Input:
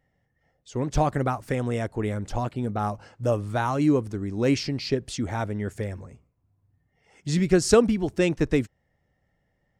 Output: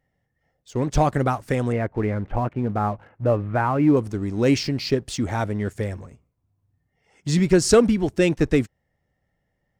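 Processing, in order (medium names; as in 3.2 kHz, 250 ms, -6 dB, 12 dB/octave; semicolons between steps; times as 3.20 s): 1.72–3.97 s: steep low-pass 2.5 kHz; waveshaping leveller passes 1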